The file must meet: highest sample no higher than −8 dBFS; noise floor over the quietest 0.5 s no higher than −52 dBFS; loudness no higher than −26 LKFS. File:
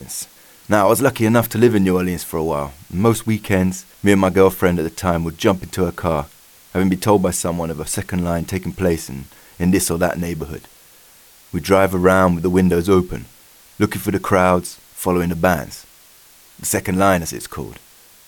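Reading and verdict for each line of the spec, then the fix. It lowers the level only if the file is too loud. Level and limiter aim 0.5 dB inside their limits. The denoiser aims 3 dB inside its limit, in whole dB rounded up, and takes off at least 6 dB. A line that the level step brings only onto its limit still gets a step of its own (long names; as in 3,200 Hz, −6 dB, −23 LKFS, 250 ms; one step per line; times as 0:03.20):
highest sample −1.5 dBFS: out of spec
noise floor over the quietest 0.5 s −48 dBFS: out of spec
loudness −18.0 LKFS: out of spec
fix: level −8.5 dB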